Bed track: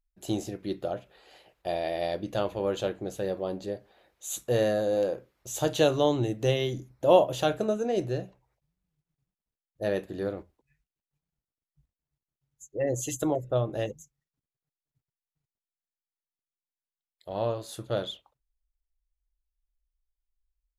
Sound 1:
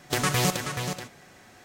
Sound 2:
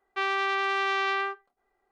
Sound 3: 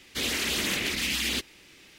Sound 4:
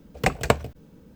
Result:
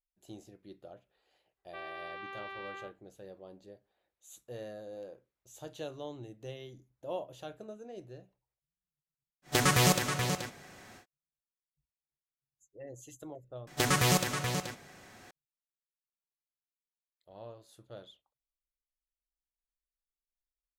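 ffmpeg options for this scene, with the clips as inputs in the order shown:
ffmpeg -i bed.wav -i cue0.wav -i cue1.wav -filter_complex "[1:a]asplit=2[link_01][link_02];[0:a]volume=-18.5dB[link_03];[2:a]lowpass=frequency=4000:width=0.5412,lowpass=frequency=4000:width=1.3066[link_04];[link_03]asplit=2[link_05][link_06];[link_05]atrim=end=13.674[link_07];[link_02]atrim=end=1.64,asetpts=PTS-STARTPTS,volume=-2dB[link_08];[link_06]atrim=start=15.306[link_09];[link_04]atrim=end=1.91,asetpts=PTS-STARTPTS,volume=-17dB,afade=type=in:duration=0.004:curve=hsin,afade=type=out:start_time=1.906:duration=0.004:curve=hsin,adelay=1570[link_10];[link_01]atrim=end=1.64,asetpts=PTS-STARTPTS,volume=-0.5dB,afade=type=in:duration=0.1,afade=type=out:start_time=1.54:duration=0.1,adelay=9420[link_11];[link_07][link_08]acrossfade=duration=0.004:curve1=hsin:curve2=hsin[link_12];[link_12][link_09]acrossfade=duration=0.004:curve1=hsin:curve2=hsin[link_13];[link_13][link_10][link_11]amix=inputs=3:normalize=0" out.wav

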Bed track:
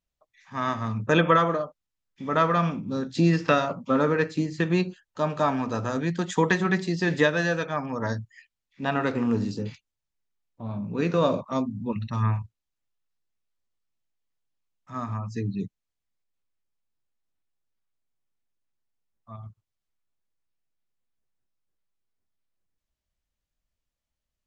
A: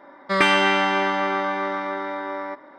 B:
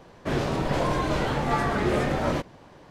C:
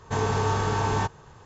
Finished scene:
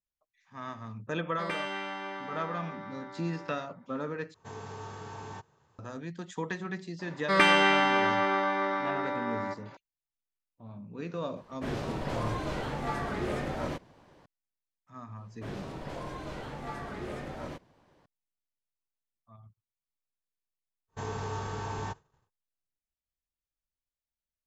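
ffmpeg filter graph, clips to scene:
ffmpeg -i bed.wav -i cue0.wav -i cue1.wav -i cue2.wav -filter_complex "[1:a]asplit=2[link_01][link_02];[3:a]asplit=2[link_03][link_04];[2:a]asplit=2[link_05][link_06];[0:a]volume=-13dB[link_07];[link_03]highpass=93[link_08];[link_04]agate=range=-33dB:threshold=-41dB:ratio=3:release=100:detection=peak[link_09];[link_07]asplit=2[link_10][link_11];[link_10]atrim=end=4.344[link_12];[link_08]atrim=end=1.45,asetpts=PTS-STARTPTS,volume=-17dB[link_13];[link_11]atrim=start=5.786[link_14];[link_01]atrim=end=2.78,asetpts=PTS-STARTPTS,volume=-17.5dB,afade=type=in:duration=0.004:curve=hsin,afade=type=out:start_time=2.776:duration=0.004:curve=hsin,adelay=1090[link_15];[link_02]atrim=end=2.78,asetpts=PTS-STARTPTS,volume=-4dB,afade=type=in:duration=0.004:curve=hsin,afade=type=out:start_time=2.776:duration=0.004:curve=hsin,adelay=6990[link_16];[link_05]atrim=end=2.9,asetpts=PTS-STARTPTS,volume=-8.5dB,afade=type=in:duration=0.004:curve=hsin,afade=type=out:start_time=2.896:duration=0.004:curve=hsin,adelay=11360[link_17];[link_06]atrim=end=2.9,asetpts=PTS-STARTPTS,volume=-14.5dB,afade=type=in:duration=0.004:curve=hsin,afade=type=out:start_time=2.896:duration=0.004:curve=hsin,adelay=15160[link_18];[link_09]atrim=end=1.45,asetpts=PTS-STARTPTS,volume=-11dB,afade=type=in:duration=0.1,afade=type=out:start_time=1.35:duration=0.1,adelay=20860[link_19];[link_12][link_13]acrossfade=duration=0.004:curve1=hsin:curve2=hsin[link_20];[link_20][link_14]acrossfade=duration=0.004:curve1=hsin:curve2=hsin[link_21];[link_21][link_15][link_16][link_17][link_18][link_19]amix=inputs=6:normalize=0" out.wav

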